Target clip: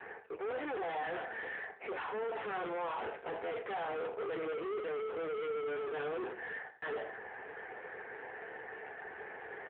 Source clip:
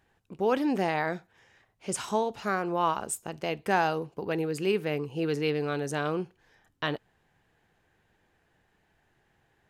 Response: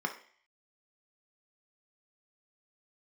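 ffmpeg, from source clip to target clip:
-filter_complex "[0:a]areverse,acompressor=threshold=-42dB:ratio=6,areverse,highpass=240,equalizer=frequency=270:width_type=q:width=4:gain=-7,equalizer=frequency=450:width_type=q:width=4:gain=10,equalizer=frequency=1200:width_type=q:width=4:gain=-6,lowpass=frequency=2100:width=0.5412,lowpass=frequency=2100:width=1.3066[link_01];[1:a]atrim=start_sample=2205,asetrate=79380,aresample=44100[link_02];[link_01][link_02]afir=irnorm=-1:irlink=0,asplit=2[link_03][link_04];[link_04]highpass=frequency=720:poles=1,volume=36dB,asoftclip=type=tanh:threshold=-28.5dB[link_05];[link_03][link_05]amix=inputs=2:normalize=0,lowpass=frequency=1300:poles=1,volume=-6dB,aecho=1:1:84|168:0.2|0.0359,asplit=2[link_06][link_07];[link_07]asoftclip=type=hard:threshold=-38.5dB,volume=-3.5dB[link_08];[link_06][link_08]amix=inputs=2:normalize=0,lowshelf=frequency=360:gain=-10.5,acontrast=51,volume=-7dB" -ar 8000 -c:a libopencore_amrnb -b:a 7400

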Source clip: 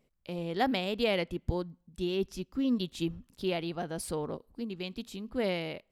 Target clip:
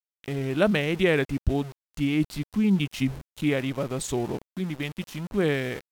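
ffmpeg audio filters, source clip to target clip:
ffmpeg -i in.wav -af "aeval=exprs='val(0)*gte(abs(val(0)),0.00596)':channel_layout=same,asetrate=35002,aresample=44100,atempo=1.25992,volume=7dB" out.wav

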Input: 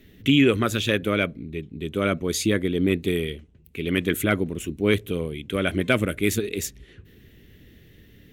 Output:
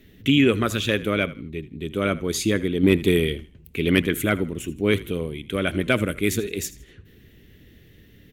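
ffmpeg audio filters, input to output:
ffmpeg -i in.wav -filter_complex "[0:a]asettb=1/sr,asplit=3[link_01][link_02][link_03];[link_01]atrim=end=2.834[link_04];[link_02]atrim=start=2.83:end=4.02,asetpts=PTS-STARTPTS,afade=type=in:duration=0.004:curve=qsin,afade=type=out:start_time=1.186:duration=0.004:curve=qsin,acontrast=34[link_05];[link_03]atrim=start=4.016[link_06];[link_04][link_05]acrossfade=duration=0.004:curve1=hsin:curve2=qsin[link_07];[link_07][link_06]acrossfade=duration=0.004:curve1=qsin:curve2=hsin,asplit=4[link_08][link_09][link_10][link_11];[link_09]adelay=80,afreqshift=-40,volume=-18dB[link_12];[link_10]adelay=160,afreqshift=-80,volume=-28.2dB[link_13];[link_11]adelay=240,afreqshift=-120,volume=-38.3dB[link_14];[link_08][link_12][link_13][link_14]amix=inputs=4:normalize=0" out.wav

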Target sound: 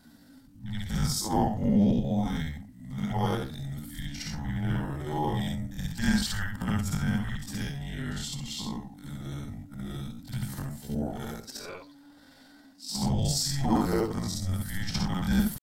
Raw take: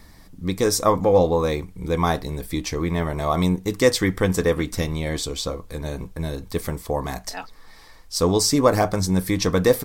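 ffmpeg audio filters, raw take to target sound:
ffmpeg -i in.wav -af "afftfilt=real='re':imag='-im':win_size=4096:overlap=0.75,afreqshift=-290,atempo=0.63,volume=-3dB" out.wav

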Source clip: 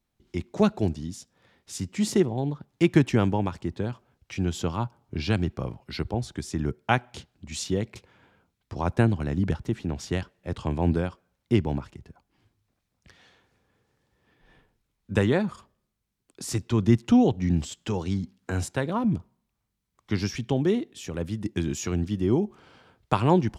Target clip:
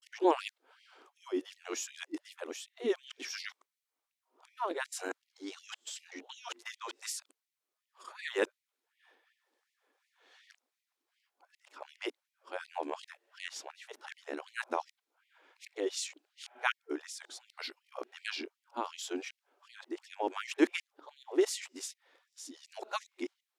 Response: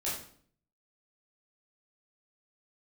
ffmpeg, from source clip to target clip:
-af "areverse,afftfilt=real='re*gte(b*sr/1024,250*pow(1900/250,0.5+0.5*sin(2*PI*2.7*pts/sr)))':imag='im*gte(b*sr/1024,250*pow(1900/250,0.5+0.5*sin(2*PI*2.7*pts/sr)))':win_size=1024:overlap=0.75,volume=-4dB"

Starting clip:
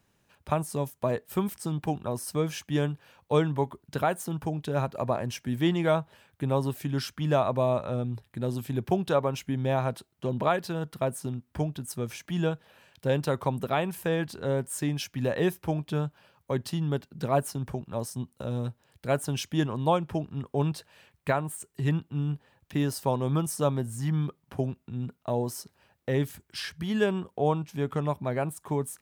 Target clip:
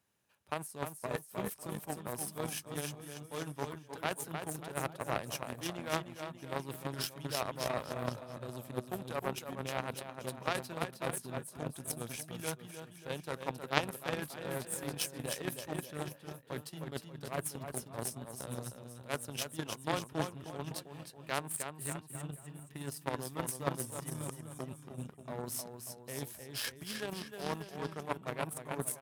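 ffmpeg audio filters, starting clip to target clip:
ffmpeg -i in.wav -filter_complex "[0:a]areverse,acompressor=threshold=-34dB:ratio=6,areverse,lowshelf=frequency=400:gain=-5.5,asplit=2[link_01][link_02];[link_02]aecho=0:1:310|589|840.1|1066|1269:0.631|0.398|0.251|0.158|0.1[link_03];[link_01][link_03]amix=inputs=2:normalize=0,aeval=exprs='0.106*(cos(1*acos(clip(val(0)/0.106,-1,1)))-cos(1*PI/2))+0.0335*(cos(3*acos(clip(val(0)/0.106,-1,1)))-cos(3*PI/2))':channel_layout=same,highpass=58,equalizer=frequency=11000:width_type=o:width=0.58:gain=7,volume=17dB" out.wav

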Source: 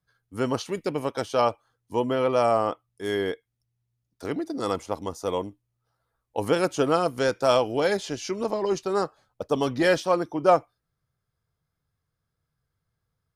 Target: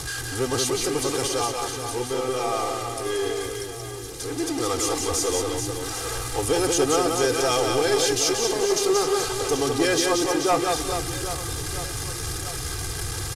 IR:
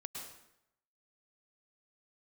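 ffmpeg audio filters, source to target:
-filter_complex "[0:a]aeval=exprs='val(0)+0.5*0.0596*sgn(val(0))':channel_layout=same,lowpass=frequency=11000:width=0.5412,lowpass=frequency=11000:width=1.3066,bass=frequency=250:gain=1,treble=frequency=4000:gain=10,aecho=1:1:2.5:0.87,asoftclip=type=hard:threshold=-8.5dB,asettb=1/sr,asplit=3[link_01][link_02][link_03];[link_01]atrim=end=1.274[link_04];[link_02]atrim=start=1.27:end=4.4,asetpts=PTS-STARTPTS,afade=type=in:duration=0.004:curve=qsin,afade=type=out:start_time=3.126:duration=0.004:curve=qsin,flanger=delay=2.5:depth=3.2:regen=-51:speed=1.9:shape=sinusoidal[link_05];[link_03]atrim=start=4.396[link_06];[link_04][link_05]acrossfade=duration=0.004:curve1=hsin:curve2=qsin[link_07];[link_07][link_06]acrossfade=duration=0.004:curve1=qsin:curve2=hsin,aecho=1:1:180|432|784.8|1279|1970:0.631|0.398|0.251|0.158|0.1,volume=-5.5dB"

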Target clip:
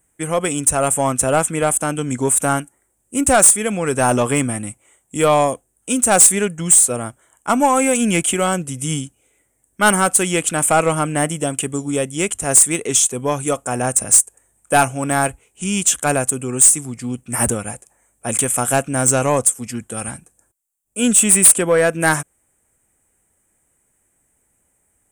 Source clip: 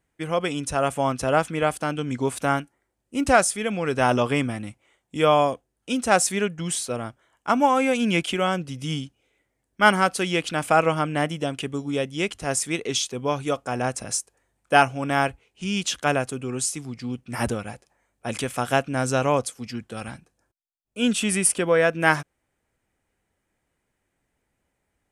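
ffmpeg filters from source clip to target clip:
ffmpeg -i in.wav -af "highshelf=frequency=6200:width_type=q:width=3:gain=10.5,aeval=exprs='3.35*(cos(1*acos(clip(val(0)/3.35,-1,1)))-cos(1*PI/2))+0.596*(cos(5*acos(clip(val(0)/3.35,-1,1)))-cos(5*PI/2))+0.15*(cos(8*acos(clip(val(0)/3.35,-1,1)))-cos(8*PI/2))':channel_layout=same,asoftclip=type=tanh:threshold=-5dB" out.wav

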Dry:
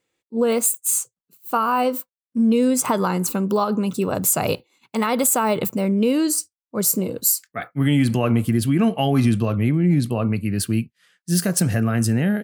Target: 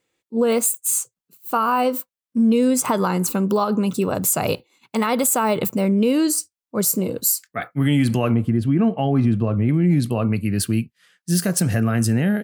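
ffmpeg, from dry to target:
ffmpeg -i in.wav -filter_complex "[0:a]asettb=1/sr,asplit=3[link_01][link_02][link_03];[link_01]atrim=end=8.344[link_04];[link_02]atrim=start=8.34:end=9.69,asetpts=PTS-STARTPTS,afade=type=in:duration=0.004:curve=qsin,afade=type=out:start_time=1.346:duration=0.004:curve=qsin,lowpass=frequency=1000:poles=1[link_05];[link_03]atrim=start=9.686[link_06];[link_04][link_05]acrossfade=duration=0.004:curve1=hsin:curve2=qsin[link_07];[link_07][link_06]acrossfade=duration=0.004:curve1=qsin:curve2=hsin,asplit=2[link_08][link_09];[link_09]alimiter=limit=-14.5dB:level=0:latency=1:release=184,volume=0dB[link_10];[link_08][link_10]amix=inputs=2:normalize=0,volume=-4dB" out.wav

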